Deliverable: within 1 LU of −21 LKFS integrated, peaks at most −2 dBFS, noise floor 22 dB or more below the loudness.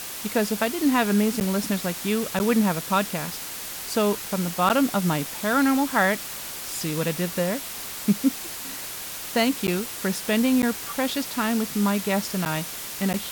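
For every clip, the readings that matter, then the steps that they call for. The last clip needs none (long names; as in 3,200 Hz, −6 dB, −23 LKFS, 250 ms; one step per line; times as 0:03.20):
number of dropouts 7; longest dropout 9.4 ms; background noise floor −35 dBFS; target noise floor −47 dBFS; integrated loudness −24.5 LKFS; sample peak −8.5 dBFS; target loudness −21.0 LKFS
→ repair the gap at 0:01.40/0:02.39/0:04.69/0:09.67/0:10.62/0:12.45/0:13.13, 9.4 ms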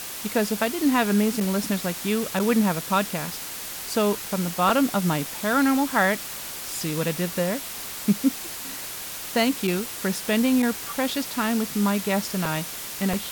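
number of dropouts 0; background noise floor −35 dBFS; target noise floor −47 dBFS
→ broadband denoise 12 dB, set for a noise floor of −35 dBFS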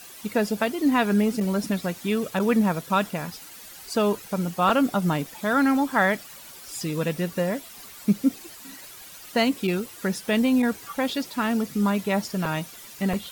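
background noise floor −44 dBFS; target noise floor −47 dBFS
→ broadband denoise 6 dB, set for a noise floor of −44 dBFS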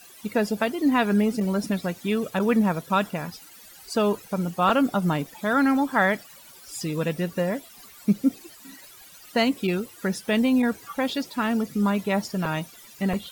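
background noise floor −48 dBFS; integrated loudness −25.0 LKFS; sample peak −8.0 dBFS; target loudness −21.0 LKFS
→ level +4 dB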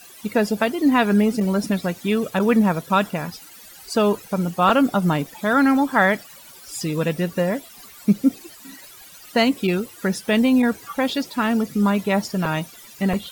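integrated loudness −21.0 LKFS; sample peak −4.0 dBFS; background noise floor −44 dBFS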